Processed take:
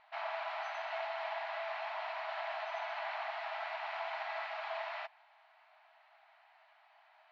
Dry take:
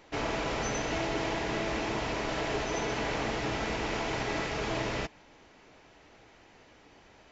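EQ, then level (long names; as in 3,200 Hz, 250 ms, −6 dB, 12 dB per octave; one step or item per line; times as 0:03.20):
linear-phase brick-wall high-pass 610 Hz
high-frequency loss of the air 420 metres
parametric band 4,200 Hz +6 dB 0.27 octaves
−2.0 dB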